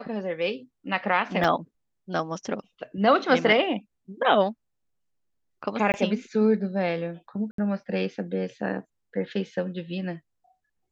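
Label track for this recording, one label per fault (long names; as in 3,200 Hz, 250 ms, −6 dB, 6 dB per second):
1.440000	1.440000	drop-out 2.8 ms
5.920000	5.940000	drop-out 19 ms
7.510000	7.580000	drop-out 73 ms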